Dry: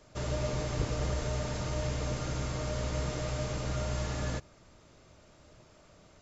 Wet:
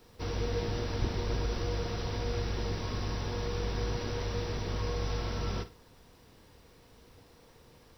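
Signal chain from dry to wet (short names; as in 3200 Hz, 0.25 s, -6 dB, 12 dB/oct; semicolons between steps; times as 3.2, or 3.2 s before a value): varispeed -22%; flutter echo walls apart 9.3 m, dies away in 0.25 s; bit-crush 11-bit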